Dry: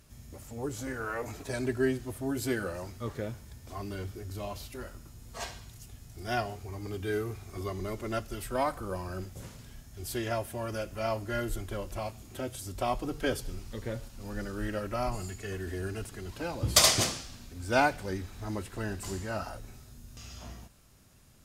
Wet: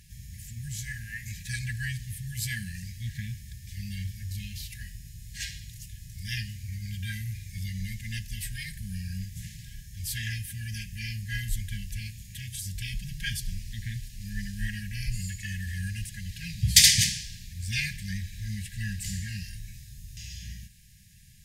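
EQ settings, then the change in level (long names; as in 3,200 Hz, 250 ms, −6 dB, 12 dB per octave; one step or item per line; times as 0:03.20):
linear-phase brick-wall band-stop 210–1,600 Hz
+5.5 dB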